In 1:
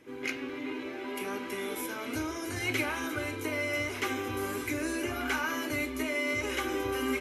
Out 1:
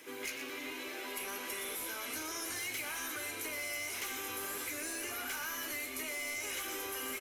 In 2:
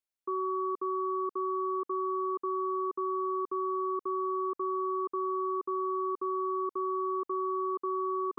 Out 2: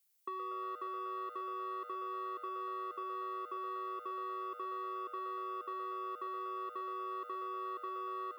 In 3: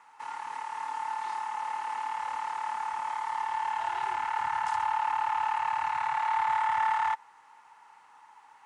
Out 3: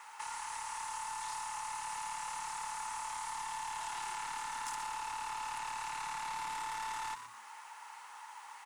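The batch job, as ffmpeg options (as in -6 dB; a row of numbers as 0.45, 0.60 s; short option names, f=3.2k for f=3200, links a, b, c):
-filter_complex "[0:a]aemphasis=mode=production:type=75fm,bandreject=f=60:t=h:w=6,bandreject=f=120:t=h:w=6,bandreject=f=180:t=h:w=6,bandreject=f=240:t=h:w=6,asplit=2[a][b];[b]highpass=f=720:p=1,volume=18dB,asoftclip=type=tanh:threshold=-13.5dB[c];[a][c]amix=inputs=2:normalize=0,lowpass=f=6.8k:p=1,volume=-6dB,acrossover=split=110|5300[d][e][f];[d]acompressor=threshold=-57dB:ratio=4[g];[e]acompressor=threshold=-35dB:ratio=4[h];[f]acompressor=threshold=-36dB:ratio=4[i];[g][h][i]amix=inputs=3:normalize=0,asplit=2[j][k];[k]asplit=4[l][m][n][o];[l]adelay=119,afreqshift=110,volume=-9.5dB[p];[m]adelay=238,afreqshift=220,volume=-17.7dB[q];[n]adelay=357,afreqshift=330,volume=-25.9dB[r];[o]adelay=476,afreqshift=440,volume=-34dB[s];[p][q][r][s]amix=inputs=4:normalize=0[t];[j][t]amix=inputs=2:normalize=0,volume=-7dB"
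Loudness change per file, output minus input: -5.0, -9.0, -9.5 LU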